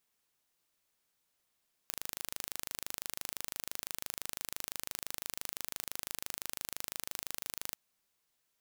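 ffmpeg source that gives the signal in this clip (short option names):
-f lavfi -i "aevalsrc='0.299*eq(mod(n,1703),0)':d=5.84:s=44100"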